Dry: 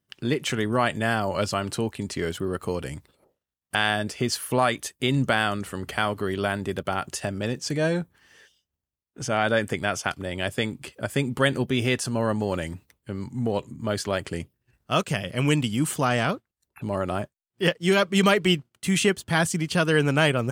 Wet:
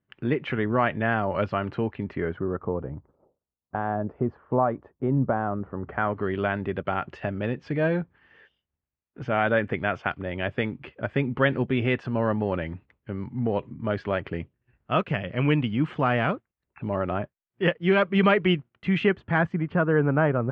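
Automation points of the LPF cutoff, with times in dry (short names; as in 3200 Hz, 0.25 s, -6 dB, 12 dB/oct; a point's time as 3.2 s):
LPF 24 dB/oct
2.02 s 2400 Hz
2.81 s 1100 Hz
5.7 s 1100 Hz
6.3 s 2600 Hz
18.98 s 2600 Hz
19.91 s 1500 Hz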